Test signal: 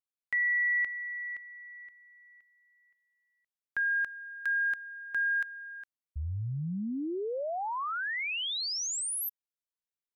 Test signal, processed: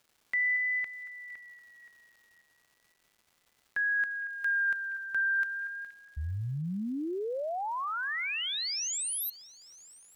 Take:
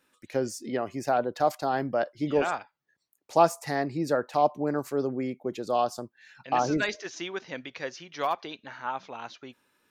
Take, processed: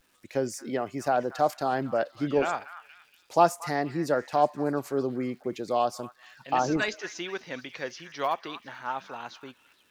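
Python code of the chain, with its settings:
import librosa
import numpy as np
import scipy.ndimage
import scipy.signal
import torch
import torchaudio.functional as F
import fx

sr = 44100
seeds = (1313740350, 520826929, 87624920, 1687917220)

y = fx.echo_stepped(x, sr, ms=234, hz=1500.0, octaves=0.7, feedback_pct=70, wet_db=-11.0)
y = fx.vibrato(y, sr, rate_hz=0.34, depth_cents=42.0)
y = fx.dmg_crackle(y, sr, seeds[0], per_s=530.0, level_db=-55.0)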